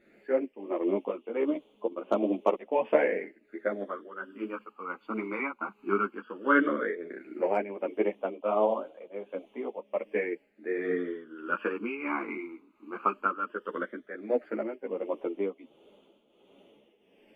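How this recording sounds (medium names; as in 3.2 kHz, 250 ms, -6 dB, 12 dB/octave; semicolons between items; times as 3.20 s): phasing stages 12, 0.14 Hz, lowest notch 560–1700 Hz; tremolo triangle 1.4 Hz, depth 75%; a shimmering, thickened sound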